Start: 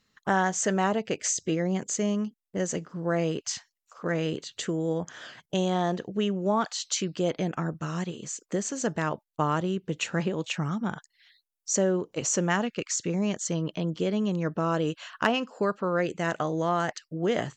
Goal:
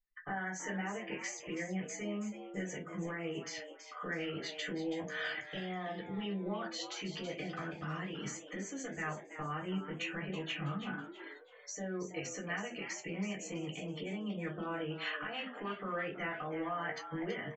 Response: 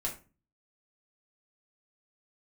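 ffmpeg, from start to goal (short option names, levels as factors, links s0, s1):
-filter_complex "[0:a]acompressor=threshold=0.0224:ratio=20,alimiter=level_in=2.11:limit=0.0631:level=0:latency=1:release=191,volume=0.473,equalizer=f=2100:w=1.2:g=12.5[s0];[1:a]atrim=start_sample=2205,asetrate=48510,aresample=44100[s1];[s0][s1]afir=irnorm=-1:irlink=0,afftdn=nr=34:nf=-48,lowpass=f=7000:w=0.5412,lowpass=f=7000:w=1.3066,asplit=5[s2][s3][s4][s5][s6];[s3]adelay=327,afreqshift=140,volume=0.299[s7];[s4]adelay=654,afreqshift=280,volume=0.101[s8];[s5]adelay=981,afreqshift=420,volume=0.0347[s9];[s6]adelay=1308,afreqshift=560,volume=0.0117[s10];[s2][s7][s8][s9][s10]amix=inputs=5:normalize=0,volume=0.668"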